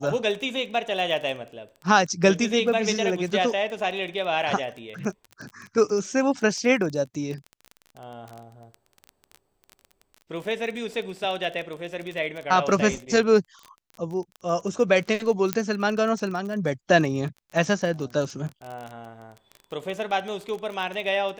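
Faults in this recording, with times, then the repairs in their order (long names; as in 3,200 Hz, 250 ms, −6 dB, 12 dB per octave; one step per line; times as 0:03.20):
surface crackle 22 per second −31 dBFS
0:15.53: click −6 dBFS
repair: click removal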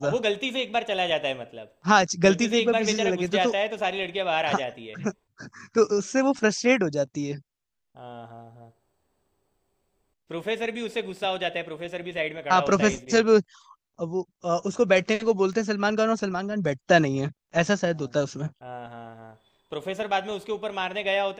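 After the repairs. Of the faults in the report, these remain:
0:15.53: click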